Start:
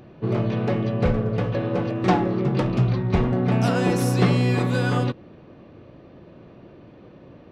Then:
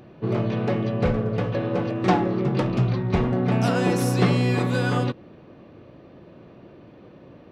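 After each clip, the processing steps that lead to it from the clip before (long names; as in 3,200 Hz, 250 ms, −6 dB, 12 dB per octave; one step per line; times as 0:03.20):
low-shelf EQ 85 Hz −5 dB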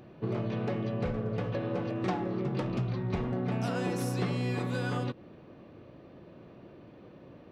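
downward compressor 3 to 1, threshold −25 dBFS, peak gain reduction 9 dB
level −4.5 dB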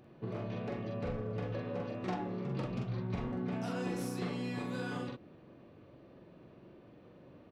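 double-tracking delay 44 ms −3 dB
level −7 dB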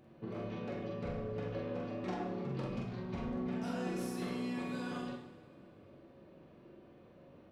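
coupled-rooms reverb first 0.9 s, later 3.2 s, from −19 dB, DRR 2 dB
level −3.5 dB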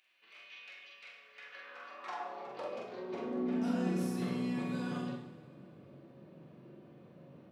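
high-pass filter sweep 2,500 Hz → 140 Hz, 0:01.19–0:04.23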